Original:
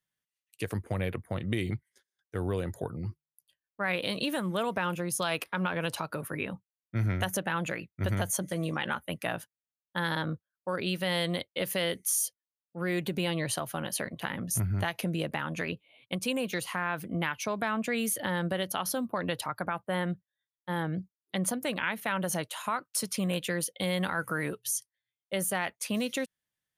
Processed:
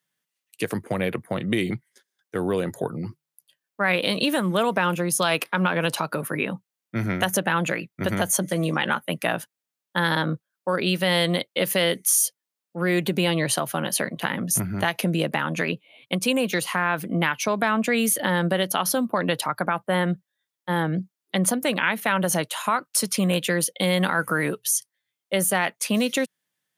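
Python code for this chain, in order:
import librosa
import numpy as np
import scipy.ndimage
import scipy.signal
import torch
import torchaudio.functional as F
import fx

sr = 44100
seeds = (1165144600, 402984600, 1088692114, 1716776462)

y = scipy.signal.sosfilt(scipy.signal.butter(4, 140.0, 'highpass', fs=sr, output='sos'), x)
y = y * 10.0 ** (8.5 / 20.0)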